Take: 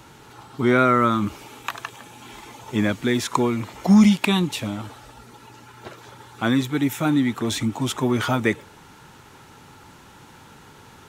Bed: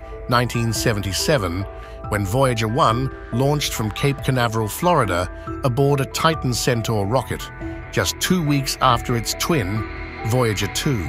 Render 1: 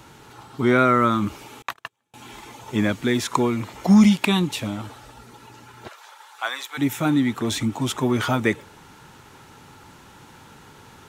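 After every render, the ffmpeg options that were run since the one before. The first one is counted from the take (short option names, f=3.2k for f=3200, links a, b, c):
-filter_complex "[0:a]asettb=1/sr,asplit=3[a][b][c];[a]atrim=end=1.624[d];[b]atrim=start=1.62:end=2.14,asetpts=PTS-STARTPTS,afade=t=in:d=0.004:c=qsin,afade=t=out:st=0.516:d=0.004:c=qsin,agate=range=-34dB:threshold=-33dB:ratio=16:release=100:detection=peak[e];[c]atrim=start=2.136[f];[d][e]acrossfade=d=0.004:c1=hsin:c2=qsin[g];[g][f]acrossfade=d=0.004:c1=qsin:c2=hsin,asplit=3[h][i][j];[h]afade=t=out:st=5.87:d=0.02[k];[i]highpass=f=680:w=0.5412,highpass=f=680:w=1.3066,afade=t=in:st=5.87:d=0.02,afade=t=out:st=6.77:d=0.02[l];[j]afade=t=in:st=6.77:d=0.02[m];[k][l][m]amix=inputs=3:normalize=0"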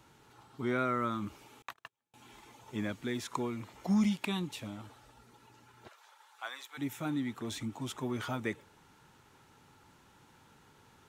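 -af "volume=-14.5dB"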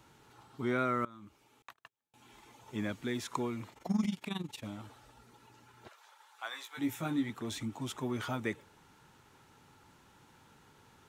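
-filter_complex "[0:a]asplit=3[a][b][c];[a]afade=t=out:st=3.7:d=0.02[d];[b]tremolo=f=22:d=0.857,afade=t=in:st=3.7:d=0.02,afade=t=out:st=4.63:d=0.02[e];[c]afade=t=in:st=4.63:d=0.02[f];[d][e][f]amix=inputs=3:normalize=0,asettb=1/sr,asplit=3[g][h][i];[g]atrim=end=6.494[j];[h]atrim=start=6.49:end=7.3,asetpts=PTS-STARTPTS,afade=t=in:d=0.004:c=qsin,afade=t=out:st=0.806:d=0.004:c=qsin,asplit=2[k][l];[l]adelay=18,volume=-4dB[m];[k][m]amix=inputs=2:normalize=0,atrim=end_sample=35721[n];[i]atrim=start=7.296[o];[j][n]acrossfade=d=0.004:c1=hsin:c2=qsin[p];[p][o]acrossfade=d=0.004:c1=qsin:c2=hsin,asplit=2[q][r];[q]atrim=end=1.05,asetpts=PTS-STARTPTS,afade=t=out:st=1.046:d=0.004:c=hsin:silence=0.1[s];[r]atrim=start=1.05,asetpts=PTS-STARTPTS,afade=t=in:d=1.86:silence=0.1[t];[s][t]concat=n=2:v=0:a=1"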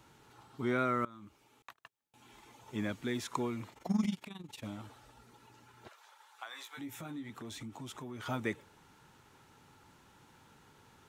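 -filter_complex "[0:a]asplit=3[a][b][c];[a]afade=t=out:st=4.15:d=0.02[d];[b]acompressor=threshold=-43dB:ratio=6:attack=3.2:release=140:knee=1:detection=peak,afade=t=in:st=4.15:d=0.02,afade=t=out:st=4.6:d=0.02[e];[c]afade=t=in:st=4.6:d=0.02[f];[d][e][f]amix=inputs=3:normalize=0,asettb=1/sr,asplit=3[g][h][i];[g]atrim=end=6.434[j];[h]atrim=start=6.43:end=8.26,asetpts=PTS-STARTPTS,afade=t=in:d=0.004:c=qsin,afade=t=out:st=1.826:d=0.004:c=qsin,acompressor=threshold=-43dB:ratio=3:attack=3.2:release=140:knee=1:detection=peak[k];[i]atrim=start=8.256[l];[j][k]acrossfade=d=0.004:c1=hsin:c2=qsin[m];[m][l]acrossfade=d=0.004:c1=qsin:c2=hsin"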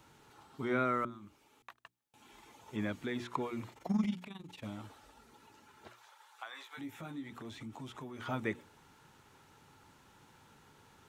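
-filter_complex "[0:a]bandreject=f=60:t=h:w=6,bandreject=f=120:t=h:w=6,bandreject=f=180:t=h:w=6,bandreject=f=240:t=h:w=6,bandreject=f=300:t=h:w=6,bandreject=f=360:t=h:w=6,acrossover=split=3600[a][b];[b]acompressor=threshold=-60dB:ratio=4:attack=1:release=60[c];[a][c]amix=inputs=2:normalize=0"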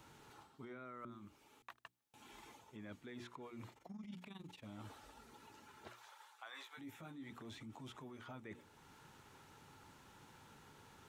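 -af "alimiter=level_in=5.5dB:limit=-24dB:level=0:latency=1:release=467,volume=-5.5dB,areverse,acompressor=threshold=-49dB:ratio=6,areverse"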